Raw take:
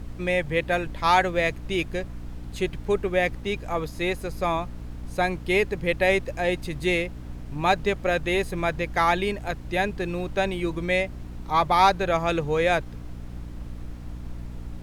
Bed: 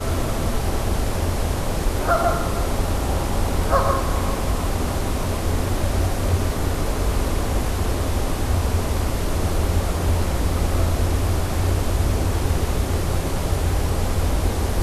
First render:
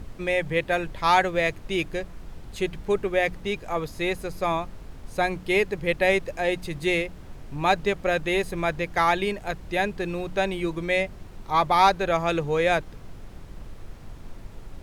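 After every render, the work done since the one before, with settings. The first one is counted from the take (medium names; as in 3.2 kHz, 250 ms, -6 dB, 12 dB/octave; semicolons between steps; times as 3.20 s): de-hum 60 Hz, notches 5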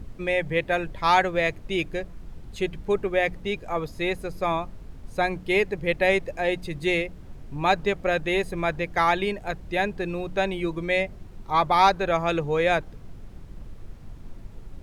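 noise reduction 6 dB, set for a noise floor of -43 dBFS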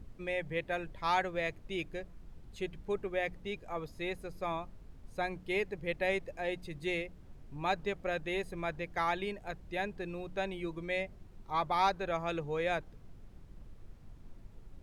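trim -11 dB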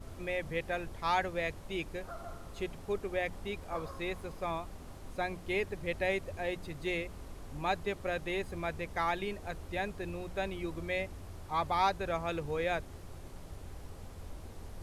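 add bed -26.5 dB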